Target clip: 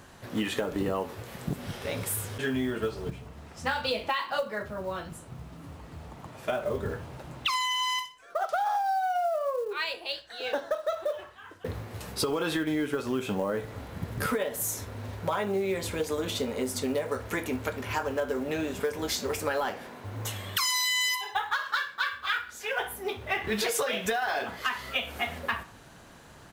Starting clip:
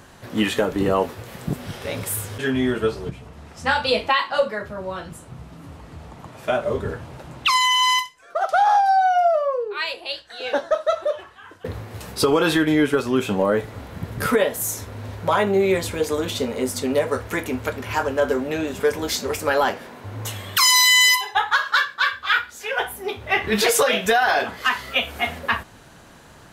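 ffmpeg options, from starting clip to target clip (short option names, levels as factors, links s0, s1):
-filter_complex "[0:a]asplit=2[s0][s1];[s1]adelay=62,lowpass=f=3500:p=1,volume=0.119,asplit=2[s2][s3];[s3]adelay=62,lowpass=f=3500:p=1,volume=0.43,asplit=2[s4][s5];[s5]adelay=62,lowpass=f=3500:p=1,volume=0.43[s6];[s0][s2][s4][s6]amix=inputs=4:normalize=0,acrusher=bits=7:mode=log:mix=0:aa=0.000001,acompressor=threshold=0.0891:ratio=6,volume=0.596"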